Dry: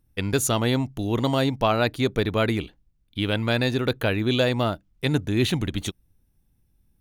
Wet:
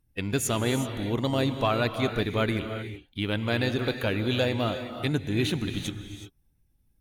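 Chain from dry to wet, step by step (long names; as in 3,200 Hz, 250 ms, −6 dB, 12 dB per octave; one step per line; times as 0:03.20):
spectral magnitudes quantised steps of 15 dB
parametric band 2,200 Hz +2 dB
reverb whose tail is shaped and stops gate 400 ms rising, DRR 7.5 dB
level −4 dB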